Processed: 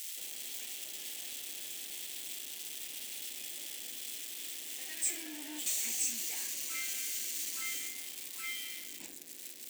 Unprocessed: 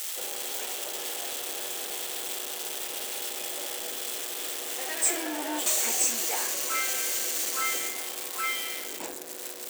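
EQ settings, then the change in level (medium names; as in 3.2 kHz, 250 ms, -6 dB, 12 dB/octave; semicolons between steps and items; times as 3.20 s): high-order bell 760 Hz -14 dB 2.3 oct; -8.0 dB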